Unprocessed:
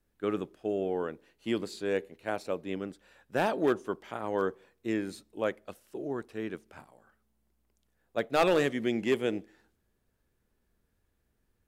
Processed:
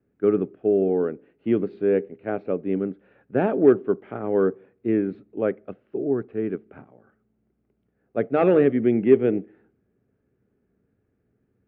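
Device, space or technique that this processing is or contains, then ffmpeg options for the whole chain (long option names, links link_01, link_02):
bass cabinet: -af "lowpass=frequency=2700:poles=1,highpass=81,equalizer=frequency=120:width_type=q:width=4:gain=8,equalizer=frequency=190:width_type=q:width=4:gain=6,equalizer=frequency=270:width_type=q:width=4:gain=7,equalizer=frequency=410:width_type=q:width=4:gain=8,equalizer=frequency=980:width_type=q:width=4:gain=-9,equalizer=frequency=1800:width_type=q:width=4:gain=-4,lowpass=frequency=2300:width=0.5412,lowpass=frequency=2300:width=1.3066,volume=4.5dB"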